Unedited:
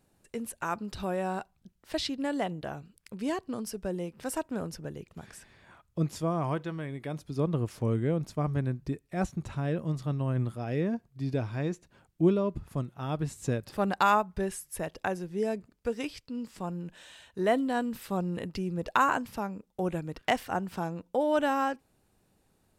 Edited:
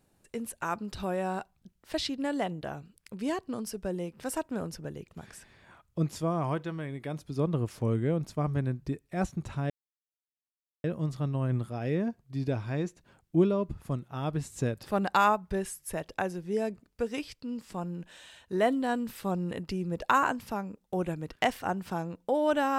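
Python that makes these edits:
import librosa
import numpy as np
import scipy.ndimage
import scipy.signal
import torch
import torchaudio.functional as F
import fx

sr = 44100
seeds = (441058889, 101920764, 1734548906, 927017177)

y = fx.edit(x, sr, fx.insert_silence(at_s=9.7, length_s=1.14), tone=tone)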